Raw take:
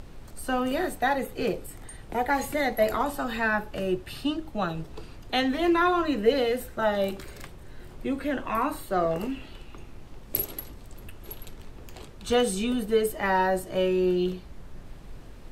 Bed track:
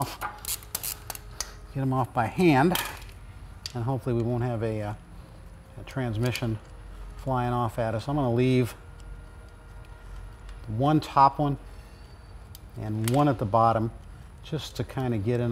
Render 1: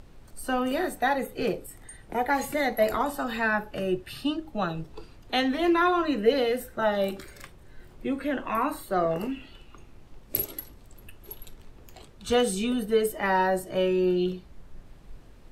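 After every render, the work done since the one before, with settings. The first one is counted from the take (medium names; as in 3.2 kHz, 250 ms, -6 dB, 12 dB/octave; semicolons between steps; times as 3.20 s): noise print and reduce 6 dB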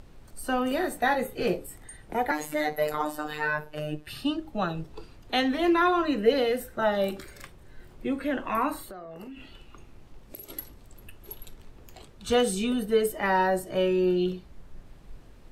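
0.89–1.77 s: doubling 17 ms -5.5 dB; 2.31–4.07 s: robot voice 151 Hz; 8.87–10.50 s: compression 12:1, threshold -38 dBFS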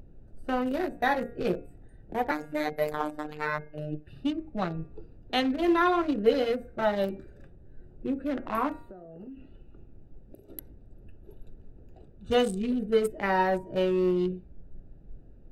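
local Wiener filter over 41 samples; de-hum 235.9 Hz, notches 11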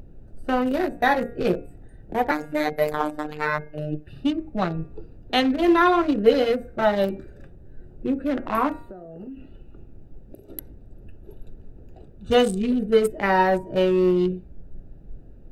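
trim +6 dB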